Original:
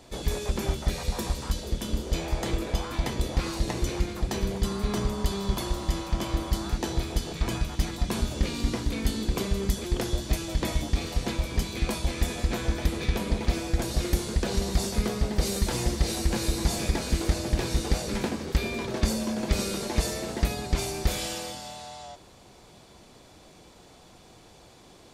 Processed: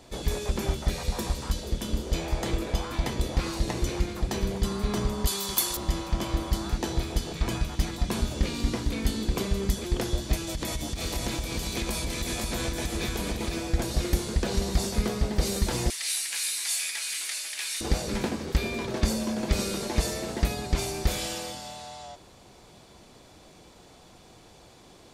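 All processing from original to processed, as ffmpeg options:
-filter_complex "[0:a]asettb=1/sr,asplit=3[a][b][c];[a]atrim=end=5.274[d];[b]atrim=start=5.27:end=5.77,asetpts=PTS-STARTPTS,afade=t=in:d=0.004:c=qsin,afade=t=out:st=0.496:d=0.004:c=qsin,aemphasis=mode=production:type=riaa,bandreject=f=640:w=7.3[e];[c]atrim=start=5.766[f];[d][e]acrossfade=d=0.004:c1=hsin:c2=qsin[g];[g][f]acrossfade=d=0.004:c1=qsin:c2=hsin,asettb=1/sr,asplit=3[h][i][j];[h]atrim=end=10.474[k];[i]atrim=start=10.47:end=13.54,asetpts=PTS-STARTPTS,afade=t=in:d=0.004:c=qsin,afade=t=out:st=3.066:d=0.004:c=qsin,highshelf=f=4.7k:g=8,acompressor=threshold=-26dB:ratio=10:attack=3.2:release=140:knee=1:detection=peak,aecho=1:1:507:0.631,atrim=end_sample=135387[l];[j]atrim=start=13.536[m];[k][l]acrossfade=d=0.004:c1=hsin:c2=qsin[n];[n][m]acrossfade=d=0.004:c1=qsin:c2=hsin,asettb=1/sr,asplit=3[o][p][q];[o]atrim=end=15.904[r];[p]atrim=start=15.9:end=17.81,asetpts=PTS-STARTPTS,afade=t=in:d=0.004:c=qsin,afade=t=out:st=1.906:d=0.004:c=qsin,highpass=f=2.2k:t=q:w=1.6,equalizer=f=9.8k:t=o:w=0.72:g=10.5[s];[q]atrim=start=17.806[t];[r][s]acrossfade=d=0.004:c1=hsin:c2=qsin[u];[u][t]acrossfade=d=0.004:c1=qsin:c2=hsin"

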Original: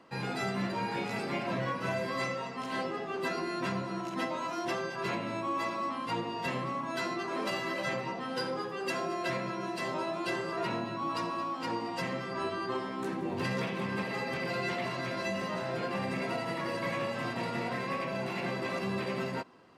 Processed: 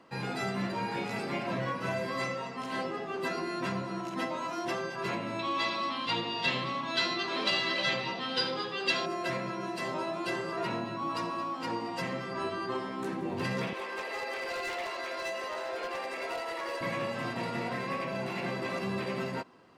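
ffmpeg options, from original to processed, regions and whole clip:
-filter_complex "[0:a]asettb=1/sr,asplit=3[a][b][c];[a]atrim=end=5.394[d];[b]atrim=start=5.39:end=9.06,asetpts=PTS-STARTPTS,afade=t=in:d=0.004:c=qsin,afade=t=out:st=3.666:d=0.004:c=qsin,lowpass=f=3.7k:t=q:w=3,aemphasis=mode=production:type=75fm[e];[c]atrim=start=9.056[f];[d][e]acrossfade=d=0.004:c1=hsin:c2=qsin[g];[g][f]acrossfade=d=0.004:c1=qsin:c2=hsin,asettb=1/sr,asplit=3[h][i][j];[h]atrim=end=13.734[k];[i]atrim=start=13.73:end=16.81,asetpts=PTS-STARTPTS,afade=t=in:d=0.004:c=qsin,afade=t=out:st=3.076:d=0.004:c=qsin,highpass=f=390:w=0.5412,highpass=f=390:w=1.3066,aeval=exprs='0.0355*(abs(mod(val(0)/0.0355+3,4)-2)-1)':c=same[l];[j]atrim=start=16.806[m];[k][l]acrossfade=d=0.004:c1=hsin:c2=qsin[n];[n][m]acrossfade=d=0.004:c1=qsin:c2=hsin"

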